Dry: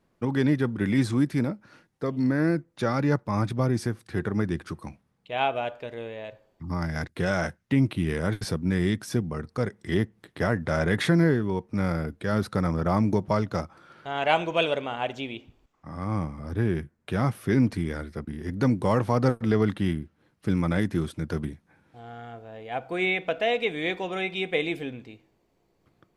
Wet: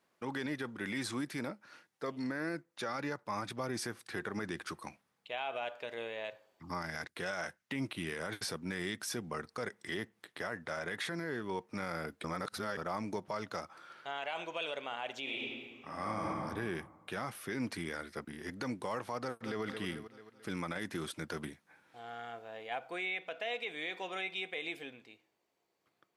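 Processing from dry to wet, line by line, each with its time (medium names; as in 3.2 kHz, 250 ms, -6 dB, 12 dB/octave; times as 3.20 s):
12.24–12.77 s: reverse
15.22–16.37 s: reverb throw, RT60 1.6 s, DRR -2.5 dB
19.20–19.63 s: echo throw 220 ms, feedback 50%, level -11.5 dB
whole clip: high-pass 990 Hz 6 dB/octave; gain riding within 4 dB 0.5 s; peak limiter -25.5 dBFS; trim -2 dB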